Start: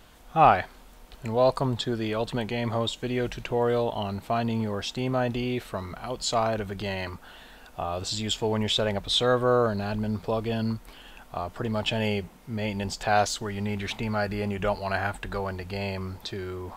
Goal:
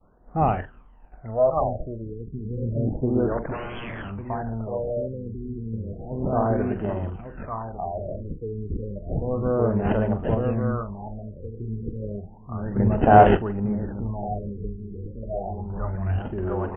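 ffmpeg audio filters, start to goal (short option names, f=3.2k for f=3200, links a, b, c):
-filter_complex "[0:a]asplit=2[a][b];[b]aecho=0:1:1152|2304|3456:0.668|0.114|0.0193[c];[a][c]amix=inputs=2:normalize=0,asettb=1/sr,asplit=3[d][e][f];[d]atrim=end=15.534[g];[e]atrim=start=15.53:end=16.19,asetpts=PTS-STARTPTS,afade=t=in:d=0.004:c=qsin,afade=t=out:st=0.656:d=0.004:c=qsin,asubboost=boost=9:cutoff=180[h];[f]atrim=start=16.186[i];[g][h]acrossfade=d=0.004:c1=hsin:c2=qsin[j];[j][i]acrossfade=d=0.004:c1=qsin:c2=hsin,agate=range=-33dB:threshold=-45dB:ratio=3:detection=peak,acrossover=split=1600[k][l];[l]acrusher=samples=39:mix=1:aa=0.000001[m];[k][m]amix=inputs=2:normalize=0,asplit=2[n][o];[o]adelay=44,volume=-10.5dB[p];[n][p]amix=inputs=2:normalize=0,asettb=1/sr,asplit=3[q][r][s];[q]atrim=end=3.374[t];[r]atrim=start=3.37:end=4.12,asetpts=PTS-STARTPTS,afade=t=in:d=0.004:c=qsin,afade=t=out:st=0.746:d=0.004:c=qsin,aeval=exprs='0.0422*(abs(mod(val(0)/0.0422+3,4)-2)-1)':c=same[u];[s]atrim=start=4.116[v];[t][u]acrossfade=d=0.004:c1=hsin:c2=qsin[w];[w][v]acrossfade=d=0.004:c1=qsin:c2=hsin,asettb=1/sr,asplit=3[x][y][z];[x]atrim=end=12.764[aa];[y]atrim=start=12.76:end=13.37,asetpts=PTS-STARTPTS,afade=t=in:d=0.004:c=qsin,afade=t=out:st=0.606:d=0.004:c=qsin,acontrast=64[ab];[z]atrim=start=13.366[ac];[aa][ab]acrossfade=d=0.004:c1=hsin:c2=qsin[ad];[ad][ac]acrossfade=d=0.004:c1=qsin:c2=hsin,aphaser=in_gain=1:out_gain=1:delay=1.7:decay=0.61:speed=0.3:type=sinusoidal,afftfilt=real='re*lt(b*sr/1024,460*pow(3500/460,0.5+0.5*sin(2*PI*0.32*pts/sr)))':imag='im*lt(b*sr/1024,460*pow(3500/460,0.5+0.5*sin(2*PI*0.32*pts/sr)))':win_size=1024:overlap=0.75,volume=-3.5dB"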